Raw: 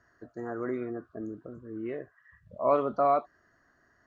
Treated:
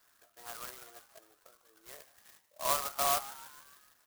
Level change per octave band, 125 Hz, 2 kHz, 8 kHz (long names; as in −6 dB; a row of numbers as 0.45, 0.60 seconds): −13.5 dB, +2.0 dB, can't be measured